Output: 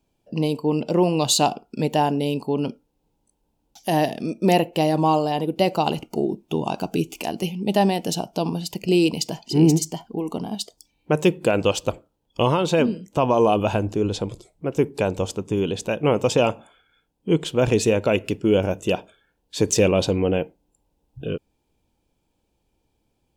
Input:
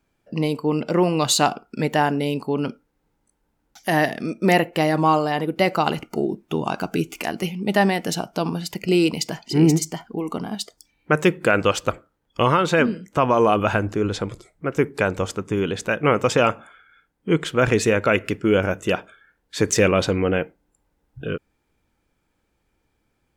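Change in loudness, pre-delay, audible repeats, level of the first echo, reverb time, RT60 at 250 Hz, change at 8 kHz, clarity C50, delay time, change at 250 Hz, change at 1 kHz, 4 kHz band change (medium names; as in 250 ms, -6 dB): -1.0 dB, no reverb, no echo, no echo, no reverb, no reverb, 0.0 dB, no reverb, no echo, 0.0 dB, -2.0 dB, 0.0 dB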